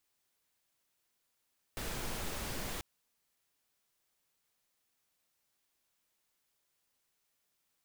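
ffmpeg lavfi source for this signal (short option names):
-f lavfi -i "anoisesrc=c=pink:a=0.0575:d=1.04:r=44100:seed=1"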